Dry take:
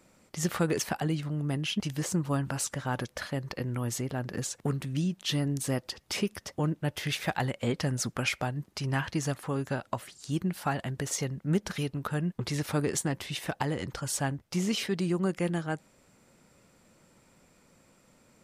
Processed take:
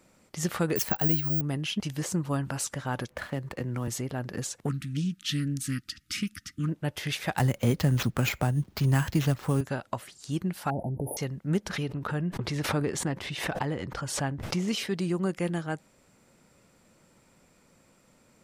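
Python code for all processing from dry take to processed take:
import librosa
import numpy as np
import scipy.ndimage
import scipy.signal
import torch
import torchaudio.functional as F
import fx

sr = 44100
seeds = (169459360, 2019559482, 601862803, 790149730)

y = fx.chain(x, sr, fx.low_shelf(hz=79.0, db=10.0),
    fx.resample_bad(factor=2, down='none', up='zero_stuff'), at=(0.76, 1.41))
y = fx.chain(y, sr, fx.median_filter(points=9),
    fx.band_squash(depth_pct=40), at=(3.1, 3.88))
y = fx.chain(y, sr, fx.brickwall_bandstop(low_hz=330.0, high_hz=1200.0),
    fx.doppler_dist(depth_ms=0.13), at=(4.69, 6.69))
y = fx.chain(y, sr, fx.low_shelf(hz=200.0, db=11.0),
    fx.sample_hold(seeds[0], rate_hz=9400.0, jitter_pct=0),
    fx.band_squash(depth_pct=40), at=(7.37, 9.61))
y = fx.chain(y, sr, fx.brickwall_bandstop(low_hz=940.0, high_hz=9500.0),
    fx.high_shelf(hz=4500.0, db=-11.0),
    fx.env_flatten(amount_pct=70), at=(10.7, 11.17))
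y = fx.chain(y, sr, fx.lowpass(hz=3000.0, slope=6),
    fx.pre_swell(db_per_s=60.0), at=(11.69, 14.68))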